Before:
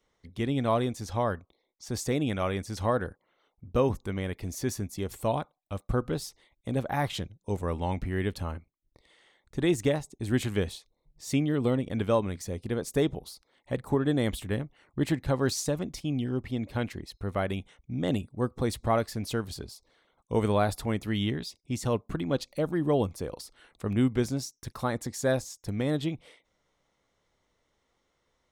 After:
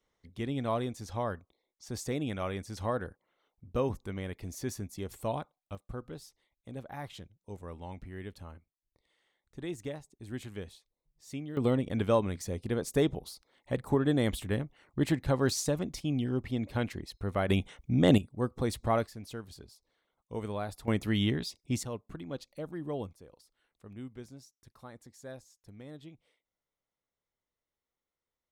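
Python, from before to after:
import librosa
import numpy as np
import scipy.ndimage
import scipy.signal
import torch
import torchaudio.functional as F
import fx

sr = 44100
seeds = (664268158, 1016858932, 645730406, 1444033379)

y = fx.gain(x, sr, db=fx.steps((0.0, -5.5), (5.75, -13.0), (11.57, -1.0), (17.49, 6.0), (18.18, -2.5), (19.07, -11.0), (20.88, 0.5), (21.83, -11.0), (23.13, -19.0)))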